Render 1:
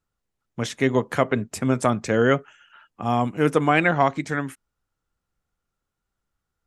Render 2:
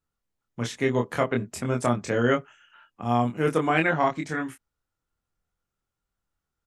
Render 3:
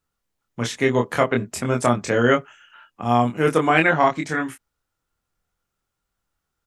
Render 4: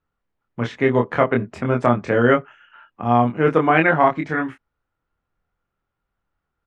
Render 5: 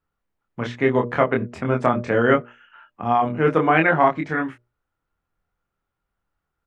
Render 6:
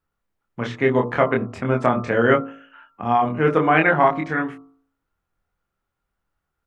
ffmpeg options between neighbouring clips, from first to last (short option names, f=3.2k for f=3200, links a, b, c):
-filter_complex "[0:a]asplit=2[a][b];[b]adelay=25,volume=-3dB[c];[a][c]amix=inputs=2:normalize=0,volume=-5dB"
-af "lowshelf=f=380:g=-3.5,volume=6.5dB"
-af "lowpass=2.2k,volume=2dB"
-af "bandreject=f=60:t=h:w=6,bandreject=f=120:t=h:w=6,bandreject=f=180:t=h:w=6,bandreject=f=240:t=h:w=6,bandreject=f=300:t=h:w=6,bandreject=f=360:t=h:w=6,bandreject=f=420:t=h:w=6,bandreject=f=480:t=h:w=6,bandreject=f=540:t=h:w=6,bandreject=f=600:t=h:w=6,volume=-1dB"
-af "bandreject=f=54.69:t=h:w=4,bandreject=f=109.38:t=h:w=4,bandreject=f=164.07:t=h:w=4,bandreject=f=218.76:t=h:w=4,bandreject=f=273.45:t=h:w=4,bandreject=f=328.14:t=h:w=4,bandreject=f=382.83:t=h:w=4,bandreject=f=437.52:t=h:w=4,bandreject=f=492.21:t=h:w=4,bandreject=f=546.9:t=h:w=4,bandreject=f=601.59:t=h:w=4,bandreject=f=656.28:t=h:w=4,bandreject=f=710.97:t=h:w=4,bandreject=f=765.66:t=h:w=4,bandreject=f=820.35:t=h:w=4,bandreject=f=875.04:t=h:w=4,bandreject=f=929.73:t=h:w=4,bandreject=f=984.42:t=h:w=4,bandreject=f=1.03911k:t=h:w=4,bandreject=f=1.0938k:t=h:w=4,bandreject=f=1.14849k:t=h:w=4,bandreject=f=1.20318k:t=h:w=4,bandreject=f=1.25787k:t=h:w=4,bandreject=f=1.31256k:t=h:w=4,bandreject=f=1.36725k:t=h:w=4,bandreject=f=1.42194k:t=h:w=4,volume=1dB"